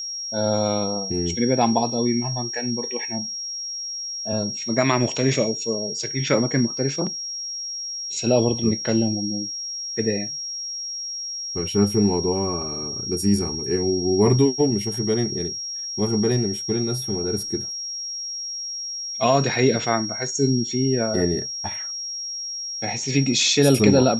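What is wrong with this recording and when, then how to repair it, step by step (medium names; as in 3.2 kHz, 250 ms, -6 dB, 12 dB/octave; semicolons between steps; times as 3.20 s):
whine 5.6 kHz -28 dBFS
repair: band-stop 5.6 kHz, Q 30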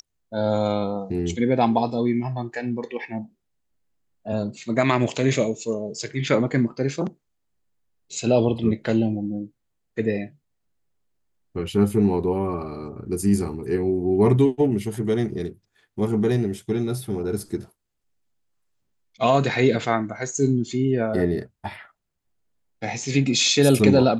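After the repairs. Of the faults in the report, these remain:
nothing left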